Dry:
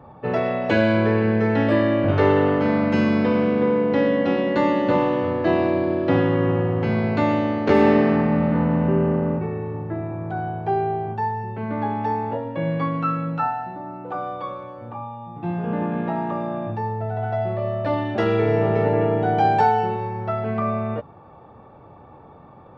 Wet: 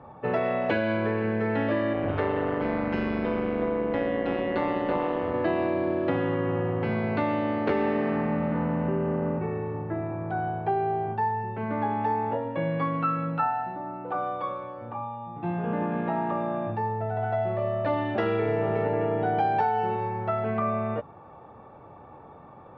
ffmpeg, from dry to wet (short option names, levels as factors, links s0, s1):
-filter_complex "[0:a]asettb=1/sr,asplit=3[s0][s1][s2];[s0]atrim=end=1.934[s3];[s1]atrim=start=1.93:end=5.34,asetpts=PTS-STARTPTS,afade=t=in:d=0.004:c=qsin,afade=t=out:st=3.406:d=0.004:c=qsin,tremolo=f=170:d=0.667[s4];[s2]atrim=start=5.336[s5];[s3][s4]acrossfade=d=0.004:c1=hsin:c2=qsin[s6];[s6][s5]acrossfade=d=0.004:c1=qsin:c2=hsin,acompressor=threshold=0.1:ratio=6,lowpass=3200,lowshelf=f=330:g=-5"